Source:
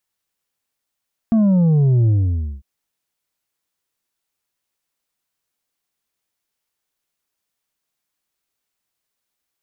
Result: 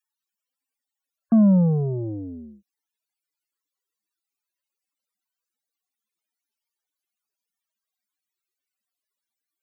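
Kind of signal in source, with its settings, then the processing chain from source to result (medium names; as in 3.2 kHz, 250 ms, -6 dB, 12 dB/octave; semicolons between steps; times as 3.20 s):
sub drop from 230 Hz, over 1.30 s, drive 5 dB, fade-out 0.54 s, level -12 dB
Chebyshev high-pass 190 Hz, order 3; loudest bins only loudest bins 64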